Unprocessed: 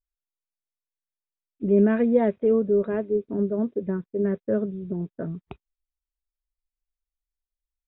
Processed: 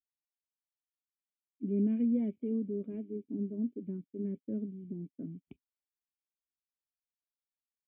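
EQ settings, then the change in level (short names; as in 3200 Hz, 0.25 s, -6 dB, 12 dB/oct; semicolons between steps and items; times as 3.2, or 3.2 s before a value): vocal tract filter i; HPF 87 Hz; -2.5 dB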